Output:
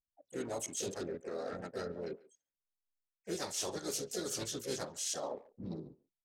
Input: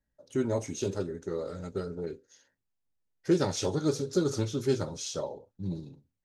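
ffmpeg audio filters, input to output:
-filter_complex "[0:a]anlmdn=0.158,aemphasis=mode=production:type=riaa,areverse,acompressor=threshold=0.00794:ratio=5,areverse,asplit=4[s0][s1][s2][s3];[s1]asetrate=22050,aresample=44100,atempo=2,volume=0.2[s4];[s2]asetrate=52444,aresample=44100,atempo=0.840896,volume=0.447[s5];[s3]asetrate=58866,aresample=44100,atempo=0.749154,volume=0.398[s6];[s0][s4][s5][s6]amix=inputs=4:normalize=0,asplit=2[s7][s8];[s8]adelay=140,highpass=300,lowpass=3400,asoftclip=type=hard:threshold=0.0106,volume=0.1[s9];[s7][s9]amix=inputs=2:normalize=0,volume=1.5"

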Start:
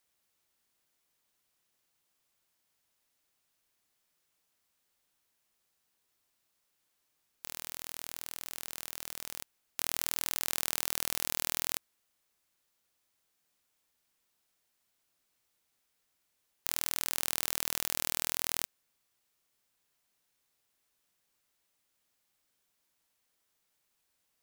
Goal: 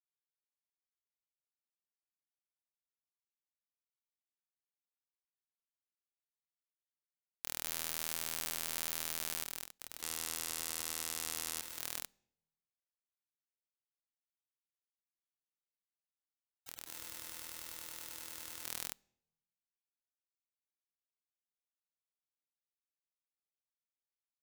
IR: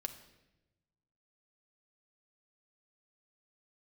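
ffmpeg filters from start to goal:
-filter_complex "[0:a]aecho=1:1:210|279:0.668|0.299,asettb=1/sr,asplit=3[s0][s1][s2];[s0]atrim=end=10.024[s3];[s1]atrim=start=10.02:end=11.62,asetpts=PTS-STARTPTS,afade=t=in:d=0.004:c=qsin,afade=t=out:st=1.596:d=0.004:c=qsin,adynamicsmooth=sensitivity=8:basefreq=5000[s4];[s2]atrim=start=11.616[s5];[s3][s4]acrossfade=d=0.004:c1=hsin:c2=qsin[s6];[s6][s5]acrossfade=d=0.004:c1=qsin:c2=hsin,aeval=exprs='sgn(val(0))*max(abs(val(0))-0.00891,0)':c=same,asplit=2[s7][s8];[1:a]atrim=start_sample=2205,asetrate=61740,aresample=44100[s9];[s8][s9]afir=irnorm=-1:irlink=0,volume=0.2[s10];[s7][s10]amix=inputs=2:normalize=0,afftfilt=real='re*lt(hypot(re,im),0.0126)':imag='im*lt(hypot(re,im),0.0126)':win_size=1024:overlap=0.75,volume=1.12"

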